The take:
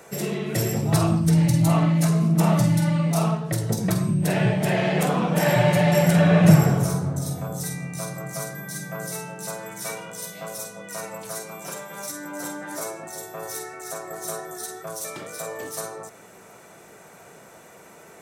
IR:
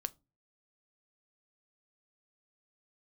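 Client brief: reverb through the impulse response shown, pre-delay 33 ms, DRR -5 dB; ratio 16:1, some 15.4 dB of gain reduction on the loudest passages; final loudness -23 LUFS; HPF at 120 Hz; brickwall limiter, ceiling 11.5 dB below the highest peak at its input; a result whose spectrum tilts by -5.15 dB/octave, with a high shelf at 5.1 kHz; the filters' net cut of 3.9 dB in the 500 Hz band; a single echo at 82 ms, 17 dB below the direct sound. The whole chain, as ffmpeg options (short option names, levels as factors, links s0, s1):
-filter_complex "[0:a]highpass=120,equalizer=f=500:t=o:g=-5,highshelf=f=5100:g=-8.5,acompressor=threshold=0.0562:ratio=16,alimiter=level_in=1.78:limit=0.0631:level=0:latency=1,volume=0.562,aecho=1:1:82:0.141,asplit=2[s0][s1];[1:a]atrim=start_sample=2205,adelay=33[s2];[s1][s2]afir=irnorm=-1:irlink=0,volume=2[s3];[s0][s3]amix=inputs=2:normalize=0,volume=2.51"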